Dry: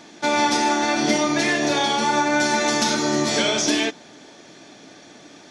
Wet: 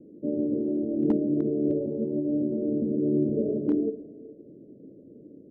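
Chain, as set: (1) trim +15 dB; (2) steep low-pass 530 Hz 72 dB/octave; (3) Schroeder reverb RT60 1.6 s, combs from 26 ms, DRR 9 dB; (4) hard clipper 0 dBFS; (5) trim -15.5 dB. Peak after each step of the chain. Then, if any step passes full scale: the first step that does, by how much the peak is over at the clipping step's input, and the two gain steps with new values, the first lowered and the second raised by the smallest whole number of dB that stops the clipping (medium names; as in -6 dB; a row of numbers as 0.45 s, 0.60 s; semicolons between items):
+6.0 dBFS, +4.0 dBFS, +4.5 dBFS, 0.0 dBFS, -15.5 dBFS; step 1, 4.5 dB; step 1 +10 dB, step 5 -10.5 dB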